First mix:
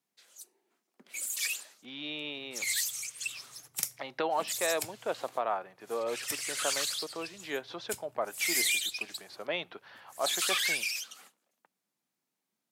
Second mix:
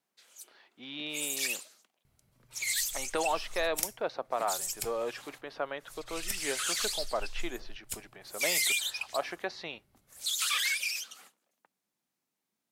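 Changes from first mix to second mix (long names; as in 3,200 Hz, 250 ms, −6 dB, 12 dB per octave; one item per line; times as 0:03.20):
speech: entry −1.05 s
master: remove high-pass filter 100 Hz 24 dB per octave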